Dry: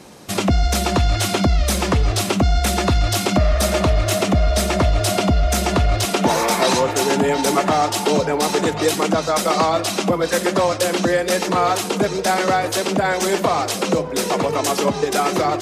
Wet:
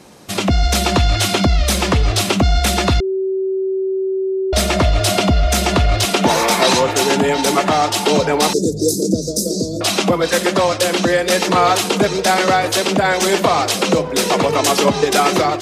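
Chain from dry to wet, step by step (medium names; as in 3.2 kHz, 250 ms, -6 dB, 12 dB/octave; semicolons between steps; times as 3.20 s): 8.53–9.81 s: inverse Chebyshev band-stop 790–3100 Hz, stop band 40 dB; dynamic bell 3.3 kHz, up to +4 dB, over -38 dBFS, Q 0.91; level rider; 3.00–4.53 s: bleep 382 Hz -15 dBFS; trim -1 dB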